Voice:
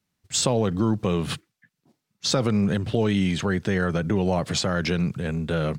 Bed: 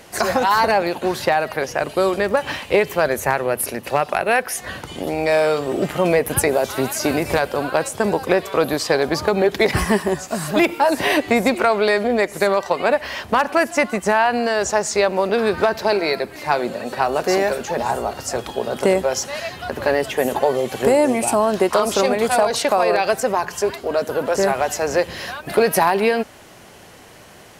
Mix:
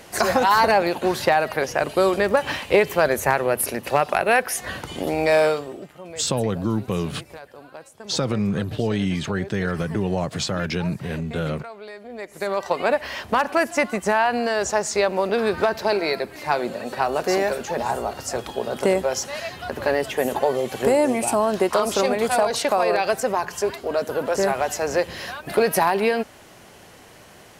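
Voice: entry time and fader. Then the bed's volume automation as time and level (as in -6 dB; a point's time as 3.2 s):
5.85 s, -1.0 dB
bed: 5.46 s -0.5 dB
5.91 s -21.5 dB
12.01 s -21.5 dB
12.66 s -3 dB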